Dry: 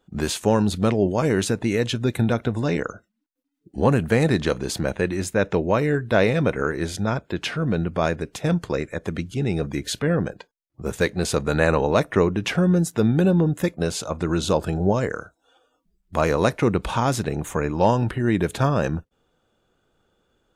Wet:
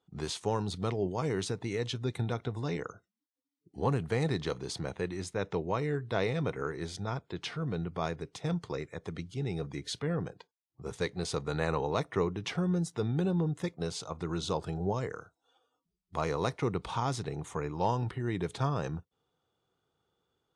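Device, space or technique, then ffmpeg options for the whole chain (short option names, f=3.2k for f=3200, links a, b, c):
car door speaker: -af "highpass=96,equalizer=f=220:t=q:w=4:g=-10,equalizer=f=320:t=q:w=4:g=-5,equalizer=f=580:t=q:w=4:g=-9,equalizer=f=1.6k:t=q:w=4:g=-8,equalizer=f=2.6k:t=q:w=4:g=-6,equalizer=f=7.2k:t=q:w=4:g=-6,lowpass=f=8.7k:w=0.5412,lowpass=f=8.7k:w=1.3066,volume=-7.5dB"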